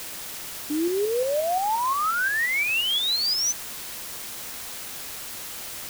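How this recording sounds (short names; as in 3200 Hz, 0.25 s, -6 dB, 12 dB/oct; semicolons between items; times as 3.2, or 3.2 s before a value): tremolo saw up 5.7 Hz, depth 40%; a quantiser's noise floor 6-bit, dither triangular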